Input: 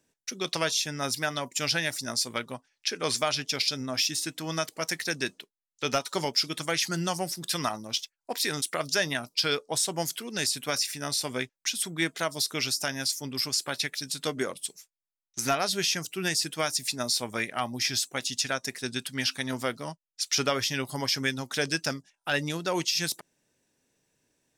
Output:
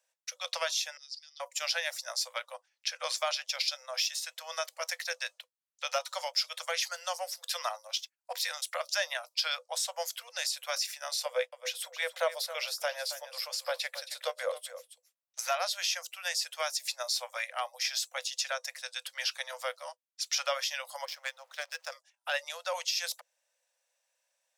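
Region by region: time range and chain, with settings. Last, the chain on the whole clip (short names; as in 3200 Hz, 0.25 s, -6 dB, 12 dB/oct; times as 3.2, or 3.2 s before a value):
0.97–1.4 ladder band-pass 5000 Hz, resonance 80% + air absorption 78 m
11.25–15.39 resonant high-pass 460 Hz, resonance Q 4.7 + bell 6300 Hz -6 dB 0.82 oct + echo 0.272 s -13 dB
21.05–21.92 zero-crossing step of -30.5 dBFS + LPF 3900 Hz 6 dB/oct + power-law curve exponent 2
whole clip: Chebyshev high-pass 500 Hz, order 10; dynamic EQ 9100 Hz, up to -6 dB, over -51 dBFS, Q 4.4; gain -3.5 dB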